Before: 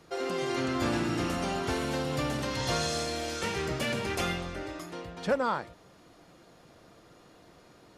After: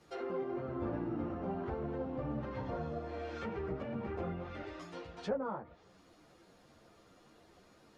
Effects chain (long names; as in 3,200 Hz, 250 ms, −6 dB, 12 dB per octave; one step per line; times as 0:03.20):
treble cut that deepens with the level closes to 840 Hz, closed at −27.5 dBFS
string-ensemble chorus
level −3 dB